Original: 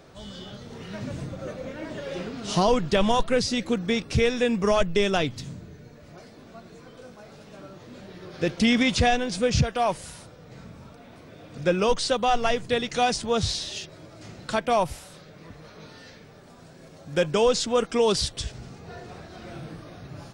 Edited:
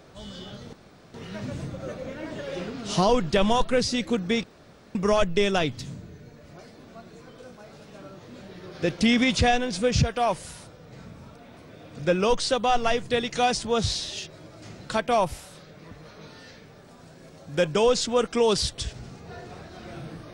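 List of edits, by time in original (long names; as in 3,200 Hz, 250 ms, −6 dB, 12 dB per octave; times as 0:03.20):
0:00.73: splice in room tone 0.41 s
0:04.03–0:04.54: fill with room tone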